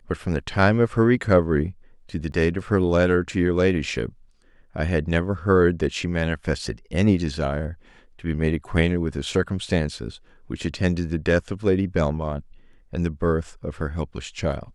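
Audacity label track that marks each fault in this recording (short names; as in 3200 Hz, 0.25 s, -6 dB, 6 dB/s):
2.320000	2.320000	gap 2.3 ms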